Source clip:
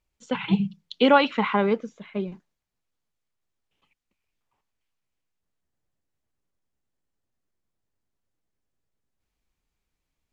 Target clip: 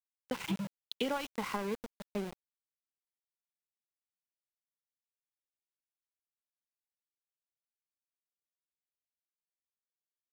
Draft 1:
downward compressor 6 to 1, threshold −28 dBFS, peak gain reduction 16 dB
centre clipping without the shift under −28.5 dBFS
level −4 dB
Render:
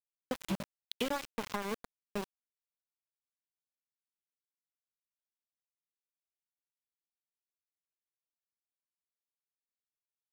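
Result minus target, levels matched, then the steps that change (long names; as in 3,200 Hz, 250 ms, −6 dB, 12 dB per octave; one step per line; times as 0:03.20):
centre clipping without the shift: distortion +7 dB
change: centre clipping without the shift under −35 dBFS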